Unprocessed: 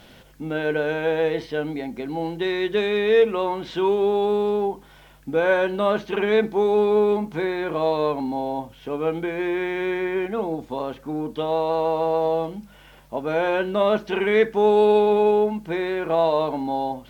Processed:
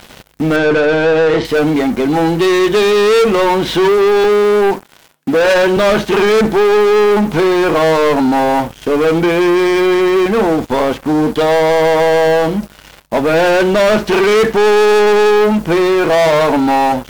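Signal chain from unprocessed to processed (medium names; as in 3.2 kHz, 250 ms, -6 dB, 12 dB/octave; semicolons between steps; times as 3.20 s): 4.24–5.77 s: high-pass 160 Hz 24 dB/octave; waveshaping leveller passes 5; 0.56–1.45 s: distance through air 92 m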